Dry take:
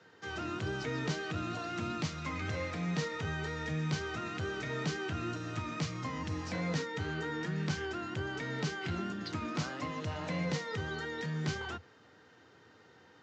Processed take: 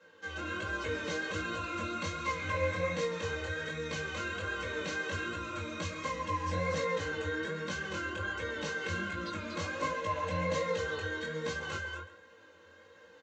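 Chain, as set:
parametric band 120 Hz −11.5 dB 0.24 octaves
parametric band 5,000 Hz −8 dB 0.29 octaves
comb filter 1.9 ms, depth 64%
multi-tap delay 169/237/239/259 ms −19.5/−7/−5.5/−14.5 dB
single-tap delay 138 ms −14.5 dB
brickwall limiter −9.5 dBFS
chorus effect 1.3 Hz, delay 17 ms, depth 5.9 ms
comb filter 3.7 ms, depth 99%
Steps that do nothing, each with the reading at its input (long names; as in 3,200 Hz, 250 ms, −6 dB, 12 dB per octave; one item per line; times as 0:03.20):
brickwall limiter −9.5 dBFS: peak of its input −20.0 dBFS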